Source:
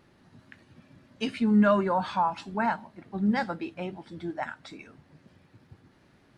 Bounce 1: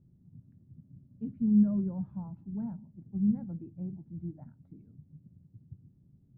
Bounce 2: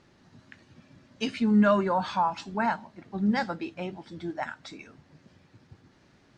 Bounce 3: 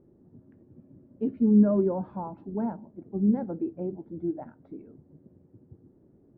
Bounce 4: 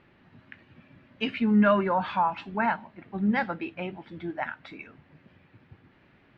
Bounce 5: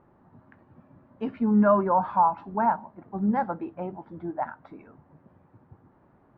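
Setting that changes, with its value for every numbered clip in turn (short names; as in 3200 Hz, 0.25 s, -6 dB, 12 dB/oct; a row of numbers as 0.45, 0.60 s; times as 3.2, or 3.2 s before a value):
synth low-pass, frequency: 150, 6600, 390, 2600, 1000 Hz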